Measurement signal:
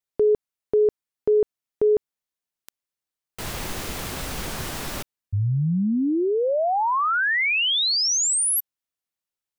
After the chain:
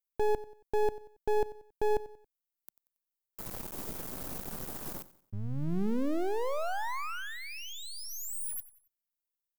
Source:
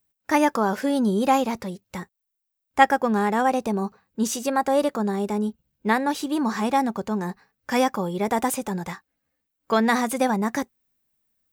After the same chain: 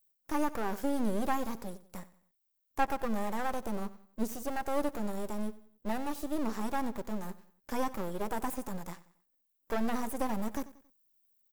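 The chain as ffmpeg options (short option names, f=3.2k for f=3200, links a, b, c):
-filter_complex "[0:a]firequalizer=gain_entry='entry(110,0);entry(190,6);entry(2000,-8);entry(5800,-5)':delay=0.05:min_phase=1,aeval=exprs='max(val(0),0)':c=same,acrossover=split=2500[a][b];[b]acompressor=threshold=-45dB:ratio=4:attack=1:release=60[c];[a][c]amix=inputs=2:normalize=0,aemphasis=mode=production:type=75fm,asplit=2[d][e];[e]aecho=0:1:92|184|276:0.133|0.052|0.0203[f];[d][f]amix=inputs=2:normalize=0,volume=-9dB"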